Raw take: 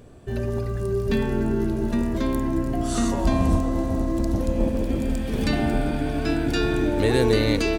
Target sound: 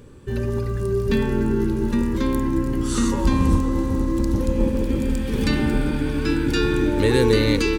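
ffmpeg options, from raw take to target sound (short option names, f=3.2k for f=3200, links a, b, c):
-af "asuperstop=centerf=680:order=4:qfactor=2.8,volume=2.5dB"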